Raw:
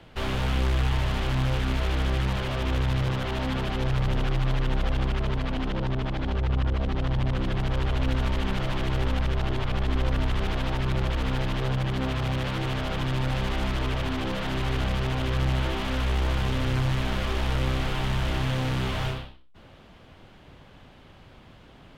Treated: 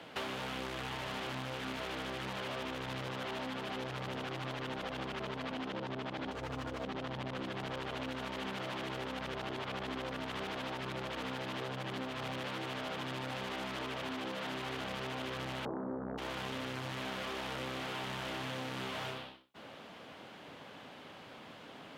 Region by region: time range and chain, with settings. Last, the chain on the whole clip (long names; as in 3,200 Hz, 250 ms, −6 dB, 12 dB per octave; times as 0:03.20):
0:06.31–0:06.84: notch comb filter 190 Hz + windowed peak hold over 5 samples
0:15.65–0:16.18: Butterworth low-pass 1,100 Hz 96 dB per octave + parametric band 200 Hz +10 dB 1.7 octaves + highs frequency-modulated by the lows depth 0.82 ms
whole clip: high-pass filter 250 Hz 12 dB per octave; notch filter 360 Hz, Q 12; downward compressor, threshold −40 dBFS; level +3 dB